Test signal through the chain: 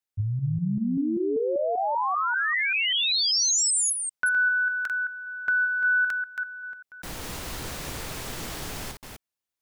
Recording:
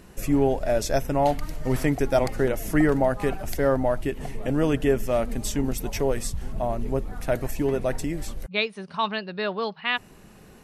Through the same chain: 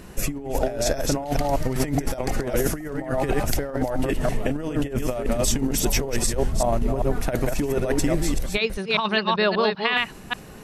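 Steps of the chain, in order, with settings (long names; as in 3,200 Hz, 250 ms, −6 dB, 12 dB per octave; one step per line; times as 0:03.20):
delay that plays each chunk backwards 195 ms, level −5 dB
dynamic equaliser 6,300 Hz, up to +3 dB, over −45 dBFS, Q 0.88
compressor whose output falls as the input rises −25 dBFS, ratio −0.5
level +3.5 dB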